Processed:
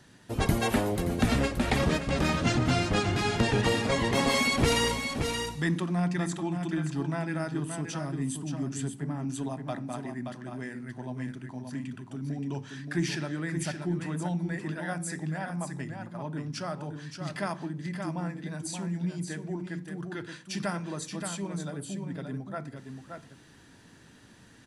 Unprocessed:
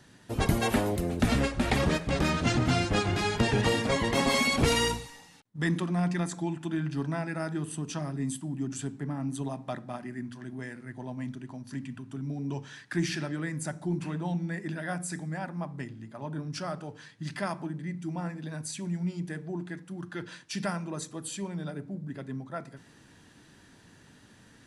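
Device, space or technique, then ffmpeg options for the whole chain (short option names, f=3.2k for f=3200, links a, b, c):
ducked delay: -filter_complex "[0:a]asplit=3[a][b][c];[b]adelay=575,volume=-6dB[d];[c]apad=whole_len=1113210[e];[d][e]sidechaincompress=threshold=-30dB:ratio=8:attack=30:release=256[f];[a][f]amix=inputs=2:normalize=0"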